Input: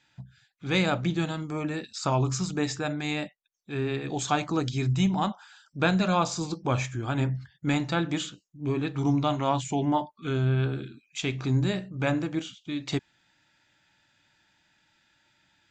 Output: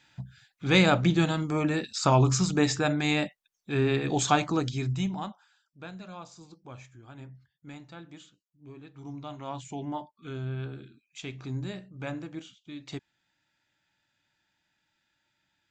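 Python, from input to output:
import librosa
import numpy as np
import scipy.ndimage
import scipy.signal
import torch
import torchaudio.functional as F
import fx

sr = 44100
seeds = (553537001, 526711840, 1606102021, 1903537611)

y = fx.gain(x, sr, db=fx.line((4.22, 4.0), (5.11, -6.5), (5.78, -19.0), (8.91, -19.0), (9.67, -9.5)))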